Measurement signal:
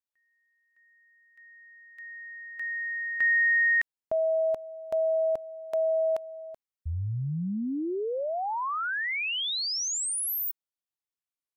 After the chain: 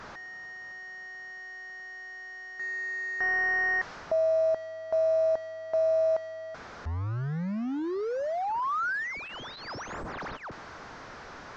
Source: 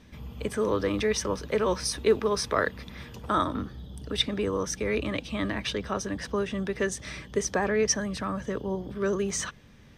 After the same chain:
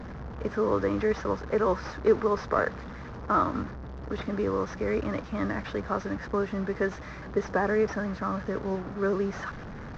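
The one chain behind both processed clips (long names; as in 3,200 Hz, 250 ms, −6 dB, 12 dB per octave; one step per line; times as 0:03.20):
linear delta modulator 32 kbit/s, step −33 dBFS
high shelf with overshoot 2,100 Hz −10.5 dB, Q 1.5
one half of a high-frequency compander decoder only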